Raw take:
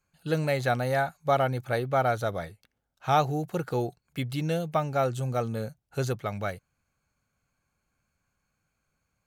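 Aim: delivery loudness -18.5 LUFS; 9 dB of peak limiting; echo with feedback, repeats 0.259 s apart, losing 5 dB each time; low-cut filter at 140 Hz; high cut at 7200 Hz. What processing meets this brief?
HPF 140 Hz; LPF 7200 Hz; limiter -20 dBFS; feedback echo 0.259 s, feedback 56%, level -5 dB; gain +13 dB

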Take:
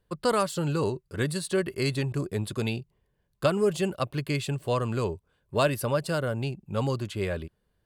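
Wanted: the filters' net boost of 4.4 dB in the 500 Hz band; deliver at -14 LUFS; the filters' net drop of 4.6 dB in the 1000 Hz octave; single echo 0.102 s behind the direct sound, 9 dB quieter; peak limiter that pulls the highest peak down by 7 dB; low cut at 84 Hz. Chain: HPF 84 Hz; bell 500 Hz +7.5 dB; bell 1000 Hz -8.5 dB; limiter -16.5 dBFS; echo 0.102 s -9 dB; gain +14 dB

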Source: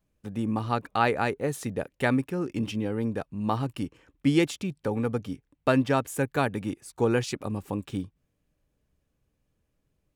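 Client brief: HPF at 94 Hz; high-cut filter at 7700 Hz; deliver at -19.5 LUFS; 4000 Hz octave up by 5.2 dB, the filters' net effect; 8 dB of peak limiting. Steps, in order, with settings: HPF 94 Hz; LPF 7700 Hz; bell 4000 Hz +7 dB; gain +10.5 dB; limiter -4.5 dBFS

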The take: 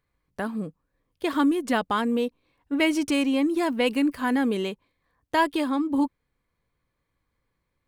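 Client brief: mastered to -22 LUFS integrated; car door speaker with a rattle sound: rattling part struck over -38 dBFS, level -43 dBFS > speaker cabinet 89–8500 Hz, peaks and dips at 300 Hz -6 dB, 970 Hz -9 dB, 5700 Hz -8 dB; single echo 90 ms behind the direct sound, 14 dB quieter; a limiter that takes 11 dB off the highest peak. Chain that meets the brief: limiter -21 dBFS; echo 90 ms -14 dB; rattling part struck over -38 dBFS, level -43 dBFS; speaker cabinet 89–8500 Hz, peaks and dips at 300 Hz -6 dB, 970 Hz -9 dB, 5700 Hz -8 dB; gain +10.5 dB

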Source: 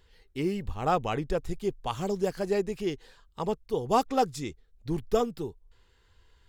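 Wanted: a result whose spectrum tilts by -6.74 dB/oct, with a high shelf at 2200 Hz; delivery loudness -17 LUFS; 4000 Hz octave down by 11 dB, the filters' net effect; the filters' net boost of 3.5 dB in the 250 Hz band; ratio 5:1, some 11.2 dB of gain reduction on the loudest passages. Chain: bell 250 Hz +5 dB; high shelf 2200 Hz -7.5 dB; bell 4000 Hz -8.5 dB; compressor 5:1, threshold -31 dBFS; gain +20 dB

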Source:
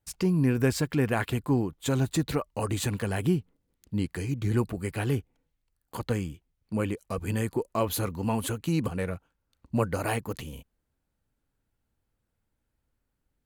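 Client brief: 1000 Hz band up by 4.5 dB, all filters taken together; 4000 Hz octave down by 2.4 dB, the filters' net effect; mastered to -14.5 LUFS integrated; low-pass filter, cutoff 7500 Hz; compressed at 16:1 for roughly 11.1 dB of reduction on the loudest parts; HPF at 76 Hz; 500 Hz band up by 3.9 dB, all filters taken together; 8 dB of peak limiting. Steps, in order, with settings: HPF 76 Hz; LPF 7500 Hz; bell 500 Hz +4 dB; bell 1000 Hz +4.5 dB; bell 4000 Hz -3 dB; compressor 16:1, threshold -27 dBFS; gain +22 dB; limiter -3 dBFS

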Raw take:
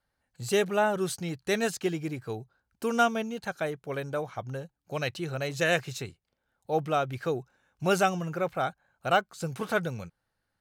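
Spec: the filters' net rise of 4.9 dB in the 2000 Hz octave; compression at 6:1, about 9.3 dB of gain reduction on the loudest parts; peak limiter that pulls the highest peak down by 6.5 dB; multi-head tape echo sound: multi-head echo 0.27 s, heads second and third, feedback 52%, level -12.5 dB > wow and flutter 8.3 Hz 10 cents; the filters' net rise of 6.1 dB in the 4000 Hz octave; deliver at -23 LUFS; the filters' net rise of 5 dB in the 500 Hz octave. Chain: bell 500 Hz +6 dB; bell 2000 Hz +5 dB; bell 4000 Hz +6 dB; compressor 6:1, threshold -25 dBFS; limiter -21 dBFS; multi-head echo 0.27 s, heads second and third, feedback 52%, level -12.5 dB; wow and flutter 8.3 Hz 10 cents; gain +10 dB

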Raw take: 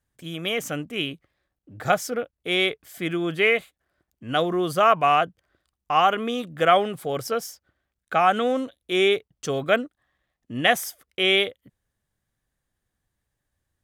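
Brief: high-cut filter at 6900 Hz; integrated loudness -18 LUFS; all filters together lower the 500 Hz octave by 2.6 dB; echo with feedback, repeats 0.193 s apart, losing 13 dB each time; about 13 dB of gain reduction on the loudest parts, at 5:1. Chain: LPF 6900 Hz; bell 500 Hz -3.5 dB; compressor 5:1, threshold -29 dBFS; feedback echo 0.193 s, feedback 22%, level -13 dB; gain +15.5 dB

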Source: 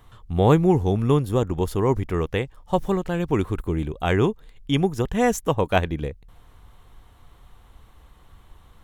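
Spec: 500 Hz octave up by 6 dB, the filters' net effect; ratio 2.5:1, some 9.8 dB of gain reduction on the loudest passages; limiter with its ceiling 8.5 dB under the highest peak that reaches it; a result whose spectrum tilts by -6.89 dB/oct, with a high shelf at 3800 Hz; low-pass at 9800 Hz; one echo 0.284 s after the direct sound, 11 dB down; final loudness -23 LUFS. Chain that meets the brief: LPF 9800 Hz; bell 500 Hz +7.5 dB; high shelf 3800 Hz -8 dB; compressor 2.5:1, threshold -23 dBFS; limiter -19.5 dBFS; echo 0.284 s -11 dB; gain +7 dB

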